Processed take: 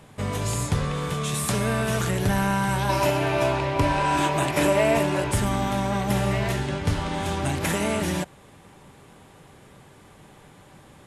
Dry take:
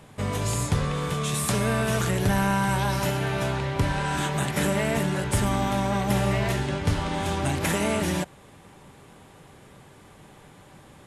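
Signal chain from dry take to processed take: 2.89–5.32 s: graphic EQ with 31 bands 200 Hz -9 dB, 315 Hz +11 dB, 630 Hz +10 dB, 1 kHz +8 dB, 2.5 kHz +7 dB, 5 kHz +3 dB

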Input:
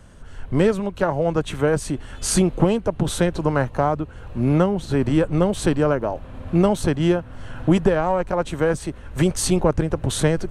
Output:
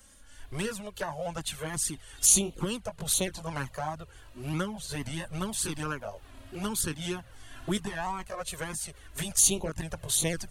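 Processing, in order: sawtooth pitch modulation +1.5 st, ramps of 252 ms; pre-emphasis filter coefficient 0.9; touch-sensitive flanger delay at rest 3.9 ms, full sweep at -28 dBFS; trim +8 dB

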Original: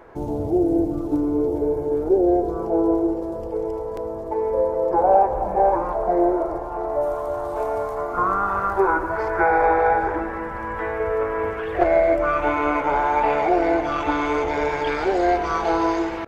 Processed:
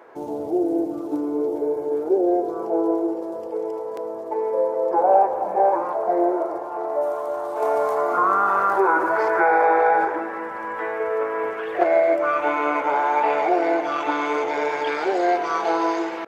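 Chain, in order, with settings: high-pass 320 Hz 12 dB/octave; 7.62–10.05 s: level flattener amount 50%

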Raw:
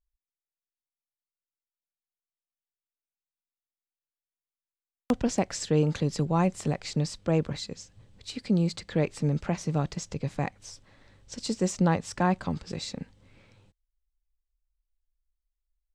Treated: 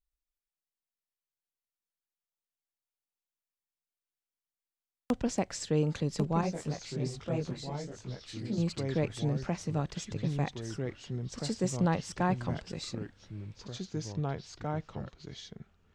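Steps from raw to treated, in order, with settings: ever faster or slower copies 131 ms, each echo -3 st, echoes 2, each echo -6 dB; 6.41–8.58 s: detune thickener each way 44 cents; trim -4.5 dB

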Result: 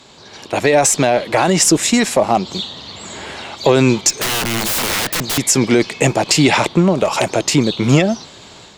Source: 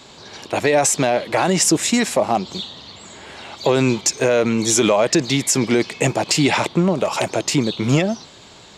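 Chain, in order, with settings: level rider gain up to 11.5 dB; Chebyshev shaper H 4 -32 dB, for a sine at -0.5 dBFS; 4.10–5.38 s: integer overflow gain 12.5 dB; trim -1 dB

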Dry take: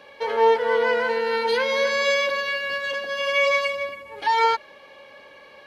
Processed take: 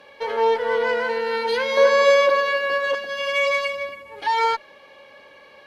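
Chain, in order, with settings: saturation -10.5 dBFS, distortion -22 dB; Chebyshev shaper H 6 -38 dB, 7 -39 dB, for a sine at -12 dBFS; 1.77–2.95 s: high-order bell 650 Hz +9 dB 2.6 oct

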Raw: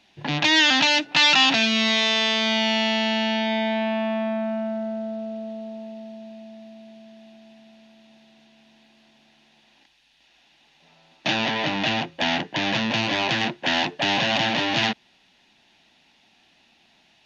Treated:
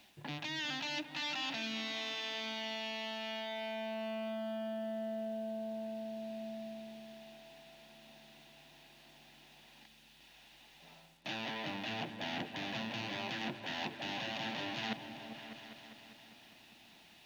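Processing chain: reverse; compression 8:1, threshold -36 dBFS, peak gain reduction 21.5 dB; reverse; bit crusher 11-bit; delay with an opening low-pass 200 ms, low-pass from 200 Hz, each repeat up 2 oct, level -6 dB; trim -1.5 dB

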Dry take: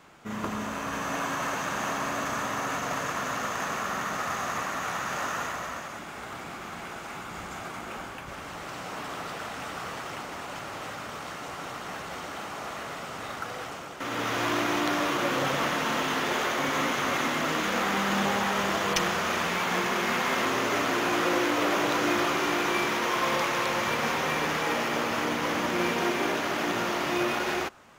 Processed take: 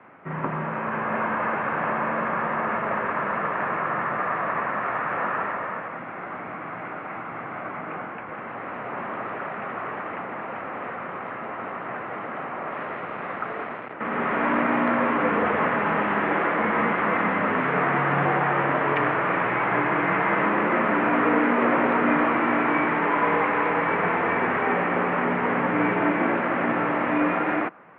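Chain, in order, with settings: 12.72–13.93 s: word length cut 6-bit, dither none; mistuned SSB -56 Hz 210–2300 Hz; trim +5.5 dB

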